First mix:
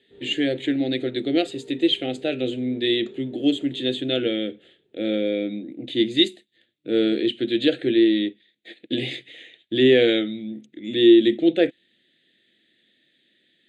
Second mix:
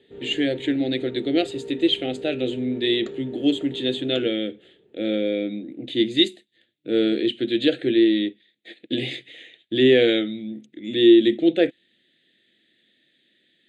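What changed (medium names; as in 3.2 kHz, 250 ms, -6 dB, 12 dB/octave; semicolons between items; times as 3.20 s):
background +10.5 dB; reverb: off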